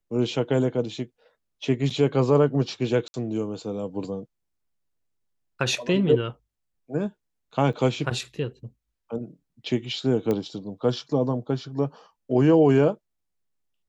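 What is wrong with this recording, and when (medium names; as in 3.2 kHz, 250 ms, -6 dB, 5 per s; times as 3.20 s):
3.08–3.14 s: dropout 60 ms
7.73 s: dropout 4.7 ms
10.31 s: pop -14 dBFS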